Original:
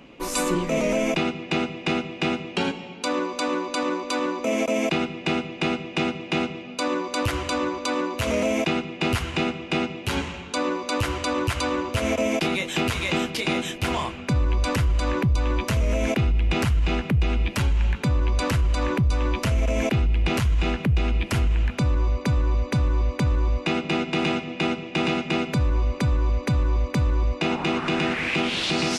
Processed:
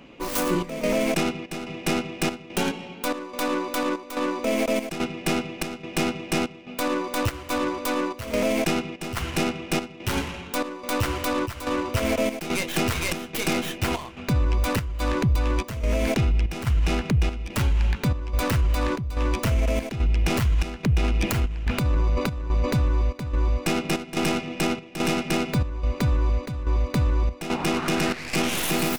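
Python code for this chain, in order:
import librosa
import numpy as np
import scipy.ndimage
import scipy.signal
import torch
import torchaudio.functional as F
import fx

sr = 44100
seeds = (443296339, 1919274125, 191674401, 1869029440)

y = fx.tracing_dist(x, sr, depth_ms=0.37)
y = fx.transient(y, sr, attack_db=-5, sustain_db=10, at=(20.98, 22.72))
y = fx.chopper(y, sr, hz=1.2, depth_pct=65, duty_pct=75)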